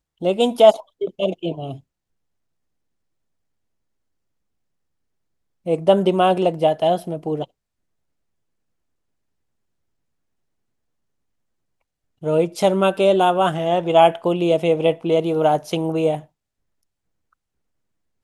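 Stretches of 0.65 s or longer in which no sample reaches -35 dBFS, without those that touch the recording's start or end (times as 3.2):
1.77–5.66
7.44–12.23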